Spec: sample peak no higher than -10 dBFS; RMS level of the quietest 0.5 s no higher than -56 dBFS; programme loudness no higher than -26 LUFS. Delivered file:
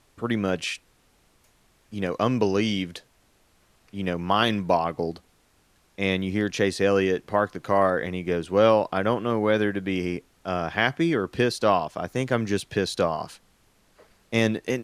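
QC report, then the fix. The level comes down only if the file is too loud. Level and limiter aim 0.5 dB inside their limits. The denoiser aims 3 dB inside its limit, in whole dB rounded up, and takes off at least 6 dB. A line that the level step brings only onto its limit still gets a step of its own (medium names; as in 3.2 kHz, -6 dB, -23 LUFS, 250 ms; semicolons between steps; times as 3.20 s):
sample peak -6.0 dBFS: fail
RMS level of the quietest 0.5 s -63 dBFS: pass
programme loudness -25.0 LUFS: fail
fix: trim -1.5 dB; peak limiter -10.5 dBFS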